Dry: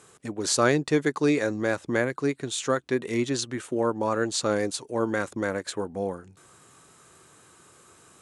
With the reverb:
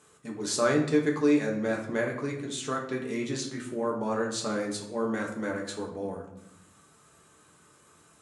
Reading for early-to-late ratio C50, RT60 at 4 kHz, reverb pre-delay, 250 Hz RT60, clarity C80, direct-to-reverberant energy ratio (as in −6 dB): 7.0 dB, 0.55 s, 5 ms, 1.2 s, 10.0 dB, −1.5 dB